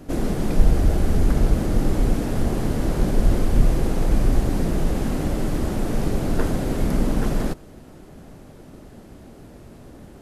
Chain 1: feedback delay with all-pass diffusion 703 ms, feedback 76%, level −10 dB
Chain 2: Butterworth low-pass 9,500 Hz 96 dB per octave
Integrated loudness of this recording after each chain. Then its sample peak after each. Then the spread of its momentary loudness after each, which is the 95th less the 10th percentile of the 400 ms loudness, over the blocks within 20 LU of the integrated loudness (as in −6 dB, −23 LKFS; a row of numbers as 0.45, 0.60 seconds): −23.5, −23.5 LKFS; −2.5, −2.5 dBFS; 13, 4 LU